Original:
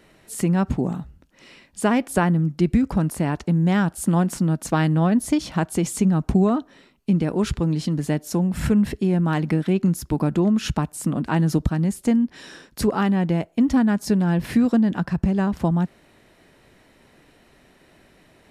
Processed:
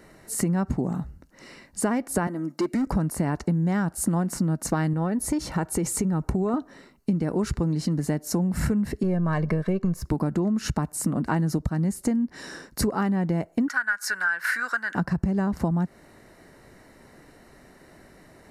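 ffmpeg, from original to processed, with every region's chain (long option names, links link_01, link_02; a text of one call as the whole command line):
ffmpeg -i in.wav -filter_complex "[0:a]asettb=1/sr,asplit=3[link_01][link_02][link_03];[link_01]atrim=end=2.274[link_04];[link_02]atrim=start=2.27:end=2.87,asetpts=PTS-STARTPTS,afade=type=in:duration=0.004:curve=qsin,afade=type=out:start_time=0.596:duration=0.004:curve=qsin,highpass=340,aecho=1:1:3.2:0.43,atrim=end_sample=26460,asoftclip=type=hard:threshold=-21dB[link_05];[link_03]atrim=start=2.866[link_06];[link_04][link_05]acrossfade=duration=0.004:curve1=hsin:curve2=qsin[link_07];[link_07][link_06]acrossfade=duration=0.004:curve1=qsin:curve2=hsin,asettb=1/sr,asplit=3[link_08][link_09][link_10];[link_08]atrim=end=4.934[link_11];[link_09]atrim=start=4.93:end=6.54,asetpts=PTS-STARTPTS,afade=type=in:duration=0.004:curve=qsin,afade=type=out:start_time=1.606:duration=0.004:curve=qsin,equalizer=frequency=5000:width=1.2:gain=-3,aecho=1:1:2.2:0.31,atrim=end_sample=71001,acompressor=threshold=-23dB:ratio=2:attack=3.2:release=140:knee=1:detection=peak[link_12];[link_10]atrim=start=6.536[link_13];[link_11][link_12]acrossfade=duration=0.004:curve1=hsin:curve2=qsin[link_14];[link_14][link_13]acrossfade=duration=0.004:curve1=qsin:curve2=hsin,asettb=1/sr,asplit=3[link_15][link_16][link_17];[link_15]atrim=end=9.034[link_18];[link_16]atrim=start=9.03:end=10.05,asetpts=PTS-STARTPTS,afade=type=in:duration=0.004:curve=qsin,afade=type=out:start_time=1.016:duration=0.004:curve=qsin,aeval=exprs='if(lt(val(0),0),0.708*val(0),val(0))':channel_layout=same,highshelf=frequency=5200:gain=-11,aecho=1:1:1.8:0.69,atrim=end_sample=44982[link_19];[link_17]atrim=start=10.046[link_20];[link_18][link_19]acrossfade=duration=0.004:curve1=hsin:curve2=qsin[link_21];[link_21][link_20]acrossfade=duration=0.004:curve1=qsin:curve2=hsin,asettb=1/sr,asplit=3[link_22][link_23][link_24];[link_22]atrim=end=13.684[link_25];[link_23]atrim=start=13.68:end=14.95,asetpts=PTS-STARTPTS,afade=type=in:duration=0.004:curve=qsin,afade=type=out:start_time=1.266:duration=0.004:curve=qsin,acompressor=mode=upward:threshold=-24dB:ratio=2.5:attack=3.2:release=140:knee=2.83:detection=peak,highpass=frequency=1500:width_type=q:width=11[link_26];[link_24]atrim=start=14.946[link_27];[link_25][link_26]acrossfade=duration=0.004:curve1=hsin:curve2=qsin[link_28];[link_28][link_27]acrossfade=duration=0.004:curve1=qsin:curve2=hsin,equalizer=frequency=3300:width_type=o:width=0.3:gain=-15,bandreject=frequency=2500:width=7.3,acompressor=threshold=-25dB:ratio=6,volume=3.5dB" out.wav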